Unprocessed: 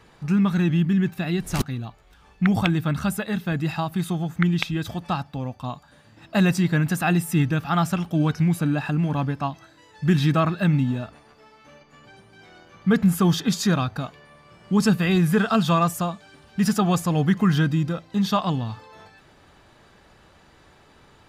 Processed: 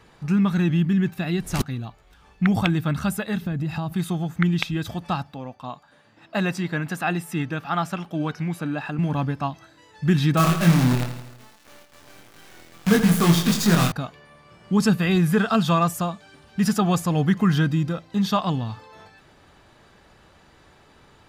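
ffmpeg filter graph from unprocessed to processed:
-filter_complex "[0:a]asettb=1/sr,asplit=3[s0][s1][s2];[s0]atrim=end=3.424[s3];[s1]atrim=start=3.42:end=3.93,asetpts=PTS-STARTPTS,afade=t=in:d=0.004:c=qsin,afade=t=out:st=0.506:d=0.004:c=qsin,lowshelf=f=340:g=10.5,acompressor=threshold=0.0708:ratio=6:attack=3.2:release=140:knee=1:detection=peak[s4];[s2]atrim=start=3.926[s5];[s3][s4]acrossfade=d=0.004:c1=hsin:c2=qsin[s6];[s6][s5]acrossfade=d=0.004:c1=qsin:c2=hsin,asettb=1/sr,asplit=3[s7][s8][s9];[s7]atrim=end=5.344[s10];[s8]atrim=start=5.34:end=8.99,asetpts=PTS-STARTPTS,afade=t=in:d=0.004:c=qsin,afade=t=out:st=3.646:d=0.004:c=qsin,highpass=f=340:p=1,highshelf=f=5100:g=-9[s11];[s9]atrim=start=8.986[s12];[s10][s11]acrossfade=d=0.004:c1=hsin:c2=qsin[s13];[s13][s12]acrossfade=d=0.004:c1=qsin:c2=hsin,asettb=1/sr,asplit=3[s14][s15][s16];[s14]atrim=end=10.374[s17];[s15]atrim=start=10.37:end=13.92,asetpts=PTS-STARTPTS,afade=t=in:d=0.004:c=qsin,afade=t=out:st=3.546:d=0.004:c=qsin,acrusher=bits=5:dc=4:mix=0:aa=0.000001,asplit=2[s18][s19];[s19]adelay=24,volume=0.708[s20];[s18][s20]amix=inputs=2:normalize=0,atrim=end_sample=156555,aecho=1:1:82|164|246|328|410|492:0.316|0.177|0.0992|0.0555|0.0311|0.0174,atrim=end_sample=156555[s21];[s16]atrim=start=13.916[s22];[s17][s21]acrossfade=d=0.004:c1=hsin:c2=qsin[s23];[s23][s22]acrossfade=d=0.004:c1=qsin:c2=hsin"

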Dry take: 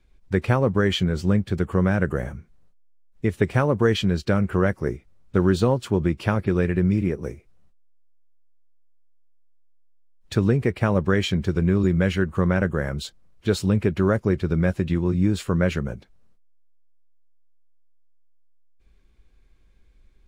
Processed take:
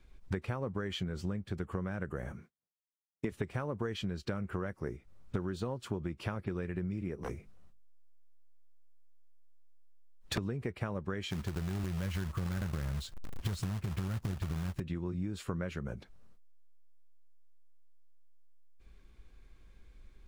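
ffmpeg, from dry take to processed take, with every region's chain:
-filter_complex "[0:a]asettb=1/sr,asplit=3[s0][s1][s2];[s0]atrim=end=2.324[s3];[s1]atrim=start=2.32:end=3.32,asetpts=PTS-STARTPTS,afade=t=in:d=0.004:c=qsin,afade=t=out:st=0.996:d=0.004:c=qsin,highpass=170,agate=range=0.0224:threshold=0.00141:ratio=3:release=100:detection=peak[s4];[s2]atrim=start=3.316[s5];[s3][s4]acrossfade=d=0.004:c1=hsin:c2=qsin[s6];[s6][s5]acrossfade=d=0.004:c1=qsin:c2=hsin,asettb=1/sr,asplit=3[s7][s8][s9];[s7]atrim=end=7.234[s10];[s8]atrim=start=7.23:end=10.38,asetpts=PTS-STARTPTS,afade=t=in:d=0.004:c=qsin,afade=t=out:st=3.146:d=0.004:c=qsin,bandreject=f=50:t=h:w=6,bandreject=f=100:t=h:w=6,bandreject=f=150:t=h:w=6,bandreject=f=200:t=h:w=6,bandreject=f=250:t=h:w=6,aeval=exprs='0.0562*(abs(mod(val(0)/0.0562+3,4)-2)-1)':c=same[s11];[s9]atrim=start=10.376[s12];[s10][s11]acrossfade=d=0.004:c1=hsin:c2=qsin[s13];[s13][s12]acrossfade=d=0.004:c1=qsin:c2=hsin,asettb=1/sr,asplit=3[s14][s15][s16];[s14]atrim=end=11.304[s17];[s15]atrim=start=11.3:end=14.8,asetpts=PTS-STARTPTS,afade=t=in:d=0.004:c=qsin,afade=t=out:st=3.496:d=0.004:c=qsin,asubboost=boost=12:cutoff=160,acompressor=threshold=0.141:ratio=6:attack=3.2:release=140:knee=1:detection=peak,acrusher=bits=3:mode=log:mix=0:aa=0.000001[s18];[s16]atrim=start=14.796[s19];[s17][s18]acrossfade=d=0.004:c1=hsin:c2=qsin[s20];[s20][s19]acrossfade=d=0.004:c1=qsin:c2=hsin,equalizer=f=1200:t=o:w=0.77:g=2.5,acompressor=threshold=0.0224:ratio=16,volume=1.12"

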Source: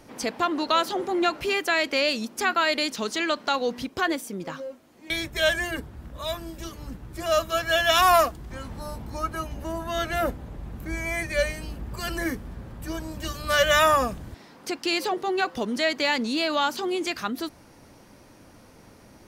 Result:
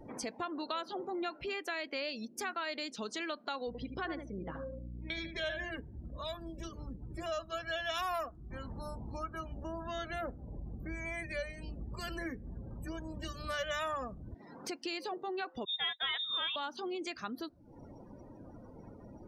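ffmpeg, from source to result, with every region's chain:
-filter_complex "[0:a]asettb=1/sr,asplit=3[s0][s1][s2];[s0]atrim=end=3.674[s3];[s1]atrim=start=3.67:end=5.71,asetpts=PTS-STARTPTS,afade=t=in:d=0.004:c=qsin,afade=t=out:st=2.036:d=0.004:c=qsin,asplit=2[s4][s5];[s5]adelay=76,lowpass=f=4200:p=1,volume=0.447,asplit=2[s6][s7];[s7]adelay=76,lowpass=f=4200:p=1,volume=0.19,asplit=2[s8][s9];[s9]adelay=76,lowpass=f=4200:p=1,volume=0.19[s10];[s4][s6][s8][s10]amix=inputs=4:normalize=0,atrim=end_sample=89964,aeval=exprs='val(0)+0.0112*(sin(2*PI*60*n/s)+sin(2*PI*2*60*n/s)/2+sin(2*PI*3*60*n/s)/3+sin(2*PI*4*60*n/s)/4+sin(2*PI*5*60*n/s)/5)':c=same,adynamicsmooth=sensitivity=4.5:basefreq=5200[s11];[s2]atrim=start=5.706[s12];[s3][s11]acrossfade=d=0.004:c1=hsin:c2=qsin[s13];[s13][s12]acrossfade=d=0.004:c1=qsin:c2=hsin,asettb=1/sr,asplit=3[s14][s15][s16];[s14]atrim=end=15.654[s17];[s15]atrim=start=15.65:end=16.56,asetpts=PTS-STARTPTS,afade=t=in:d=0.004:c=qsin,afade=t=out:st=0.906:d=0.004:c=qsin,agate=range=0.0224:threshold=0.0708:ratio=3:release=100:detection=peak,aeval=exprs='0.299*sin(PI/2*2.24*val(0)/0.299)':c=same,lowpass=f=3300:t=q:w=0.5098,lowpass=f=3300:t=q:w=0.6013,lowpass=f=3300:t=q:w=0.9,lowpass=f=3300:t=q:w=2.563,afreqshift=-3900[s18];[s16]atrim=start=16.556[s19];[s17][s18]acrossfade=d=0.004:c1=hsin:c2=qsin[s20];[s20][s19]acrossfade=d=0.004:c1=qsin:c2=hsin,acompressor=threshold=0.00562:ratio=2.5,afftdn=nr=30:nf=-51,volume=1.19"

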